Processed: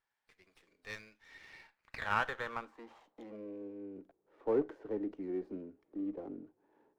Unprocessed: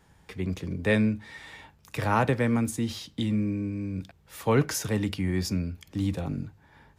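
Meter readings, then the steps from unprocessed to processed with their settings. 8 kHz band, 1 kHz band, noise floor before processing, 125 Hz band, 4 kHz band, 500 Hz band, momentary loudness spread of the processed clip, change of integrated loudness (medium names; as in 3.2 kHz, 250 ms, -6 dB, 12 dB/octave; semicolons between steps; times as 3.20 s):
under -25 dB, -8.5 dB, -61 dBFS, -27.0 dB, -15.0 dB, -8.0 dB, 22 LU, -11.0 dB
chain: knee-point frequency compression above 3.8 kHz 1.5:1; three-band isolator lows -20 dB, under 310 Hz, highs -19 dB, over 2.5 kHz; band-pass sweep 6.7 kHz -> 340 Hz, 0.42–4.10 s; sliding maximum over 5 samples; trim +1 dB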